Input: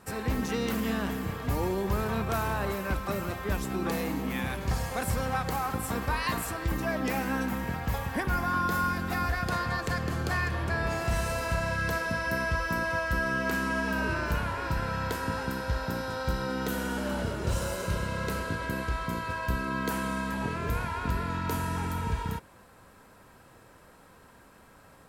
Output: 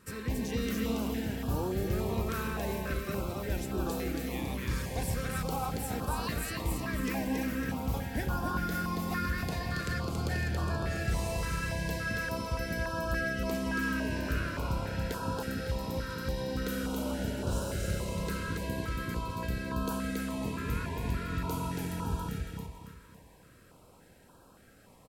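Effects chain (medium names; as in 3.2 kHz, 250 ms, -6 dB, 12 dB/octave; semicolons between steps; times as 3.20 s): feedback delay 278 ms, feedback 40%, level -3 dB; step-sequenced notch 3.5 Hz 750–2000 Hz; trim -3.5 dB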